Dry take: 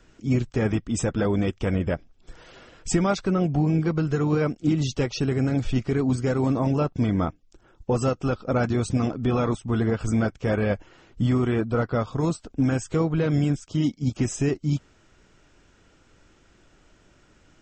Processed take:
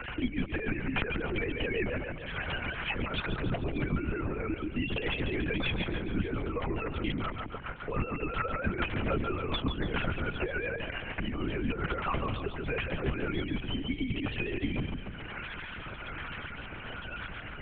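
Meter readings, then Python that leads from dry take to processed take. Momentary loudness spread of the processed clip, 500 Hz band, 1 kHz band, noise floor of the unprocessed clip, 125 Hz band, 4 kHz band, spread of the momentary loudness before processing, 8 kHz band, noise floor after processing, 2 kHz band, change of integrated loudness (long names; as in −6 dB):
8 LU, −9.0 dB, −4.5 dB, −59 dBFS, −11.5 dB, +1.5 dB, 4 LU, below −40 dB, −42 dBFS, +2.0 dB, −9.0 dB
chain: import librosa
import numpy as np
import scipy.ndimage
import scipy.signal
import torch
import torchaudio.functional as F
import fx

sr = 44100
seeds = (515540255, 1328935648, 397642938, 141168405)

p1 = fx.sine_speech(x, sr)
p2 = fx.tilt_shelf(p1, sr, db=-8.5, hz=1200.0)
p3 = fx.hum_notches(p2, sr, base_hz=50, count=4)
p4 = fx.over_compress(p3, sr, threshold_db=-39.0, ratio=-1.0)
p5 = fx.rotary_switch(p4, sr, hz=7.0, then_hz=1.2, switch_at_s=13.33)
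p6 = p5 + fx.echo_feedback(p5, sr, ms=144, feedback_pct=42, wet_db=-6, dry=0)
p7 = fx.lpc_vocoder(p6, sr, seeds[0], excitation='whisper', order=8)
p8 = fx.band_squash(p7, sr, depth_pct=70)
y = p8 * librosa.db_to_amplitude(7.0)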